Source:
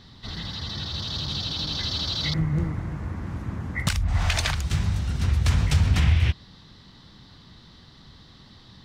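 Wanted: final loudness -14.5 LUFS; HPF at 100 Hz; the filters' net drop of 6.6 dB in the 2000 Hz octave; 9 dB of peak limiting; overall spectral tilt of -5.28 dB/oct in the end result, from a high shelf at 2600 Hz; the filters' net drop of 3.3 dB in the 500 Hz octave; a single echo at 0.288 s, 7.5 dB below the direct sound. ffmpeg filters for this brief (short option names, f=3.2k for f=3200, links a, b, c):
-af "highpass=100,equalizer=f=500:t=o:g=-4,equalizer=f=2k:t=o:g=-5.5,highshelf=f=2.6k:g=-5.5,alimiter=limit=-20.5dB:level=0:latency=1,aecho=1:1:288:0.422,volume=16.5dB"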